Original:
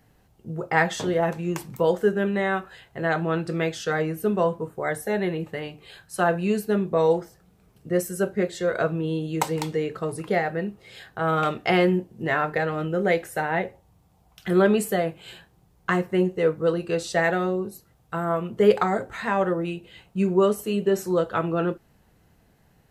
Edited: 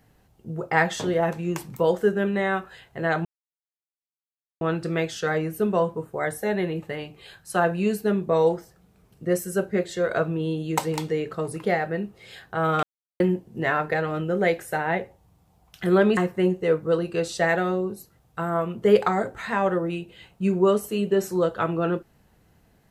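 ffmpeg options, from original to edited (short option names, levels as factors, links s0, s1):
-filter_complex "[0:a]asplit=5[s0][s1][s2][s3][s4];[s0]atrim=end=3.25,asetpts=PTS-STARTPTS,afade=t=out:st=3.246:d=0.004:c=hsin,apad=pad_dur=1.36[s5];[s1]atrim=start=3.25:end=11.47,asetpts=PTS-STARTPTS,afade=t=in:d=0.004:c=hsin,afade=t=out:st=8.216:d=0.004:c=hsin[s6];[s2]atrim=start=11.47:end=11.84,asetpts=PTS-STARTPTS,volume=0[s7];[s3]atrim=start=11.84:end=14.812,asetpts=PTS-STARTPTS,afade=t=in:d=0.004:c=hsin[s8];[s4]atrim=start=15.918[s9];[s5][s6][s7][s8]concat=n=4:v=0:a=1[s10];[s10][s9]acrossfade=d=0.004:c1=hsin:c2=hsin"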